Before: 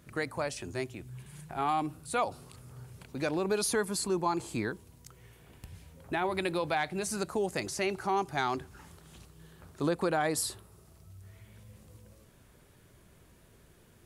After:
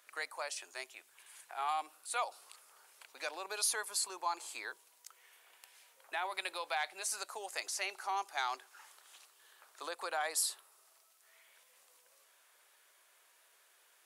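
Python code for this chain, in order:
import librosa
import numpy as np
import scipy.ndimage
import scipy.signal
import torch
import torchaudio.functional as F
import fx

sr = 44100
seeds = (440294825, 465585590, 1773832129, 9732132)

y = scipy.signal.sosfilt(scipy.signal.bessel(4, 990.0, 'highpass', norm='mag', fs=sr, output='sos'), x)
y = fx.dynamic_eq(y, sr, hz=1700.0, q=0.84, threshold_db=-46.0, ratio=4.0, max_db=-3)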